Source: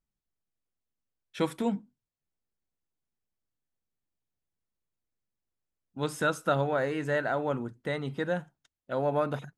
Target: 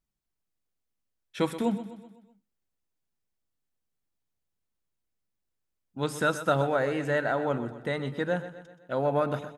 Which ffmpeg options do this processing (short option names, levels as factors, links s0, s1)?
-af "aecho=1:1:126|252|378|504|630:0.224|0.114|0.0582|0.0297|0.0151,volume=1.19"